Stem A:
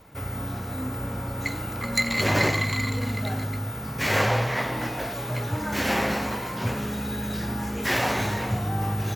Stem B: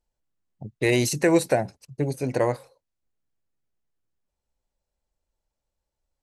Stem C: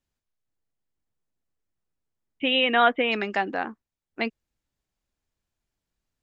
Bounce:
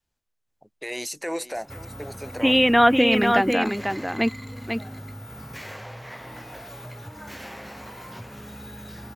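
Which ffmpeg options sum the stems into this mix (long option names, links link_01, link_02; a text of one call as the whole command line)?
ffmpeg -i stem1.wav -i stem2.wav -i stem3.wav -filter_complex "[0:a]equalizer=frequency=250:width_type=o:width=1.4:gain=-3.5,acompressor=threshold=-34dB:ratio=6,adelay=1550,volume=-3dB[link_01];[1:a]highpass=600,alimiter=limit=-19.5dB:level=0:latency=1:release=31,volume=-2.5dB,asplit=2[link_02][link_03];[link_03]volume=-17dB[link_04];[2:a]volume=2.5dB,asplit=2[link_05][link_06];[link_06]volume=-5.5dB[link_07];[link_04][link_07]amix=inputs=2:normalize=0,aecho=0:1:494:1[link_08];[link_01][link_02][link_05][link_08]amix=inputs=4:normalize=0,adynamicequalizer=threshold=0.0112:dfrequency=250:dqfactor=1.2:tfrequency=250:tqfactor=1.2:attack=5:release=100:ratio=0.375:range=3.5:mode=boostabove:tftype=bell" out.wav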